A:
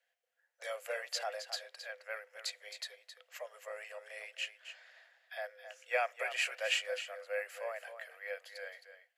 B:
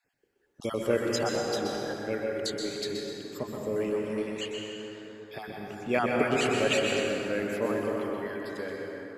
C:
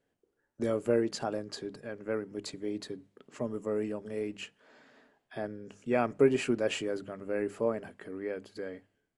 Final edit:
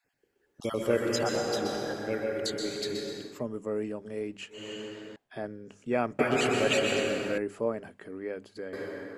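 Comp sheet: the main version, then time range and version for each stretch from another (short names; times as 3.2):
B
3.33–4.6 from C, crossfade 0.24 s
5.16–6.19 from C
7.38–8.73 from C
not used: A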